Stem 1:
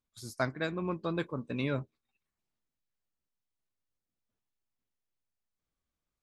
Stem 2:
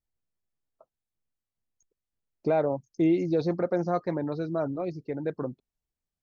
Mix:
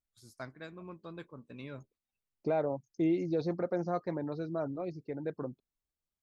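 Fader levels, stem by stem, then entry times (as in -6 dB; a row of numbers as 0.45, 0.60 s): -12.5, -6.0 dB; 0.00, 0.00 s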